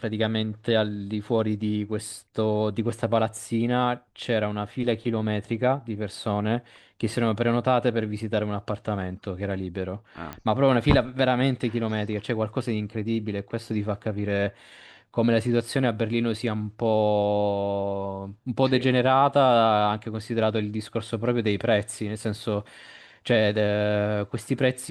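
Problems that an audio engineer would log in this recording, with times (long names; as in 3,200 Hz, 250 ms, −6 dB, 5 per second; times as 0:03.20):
0:10.33: click −19 dBFS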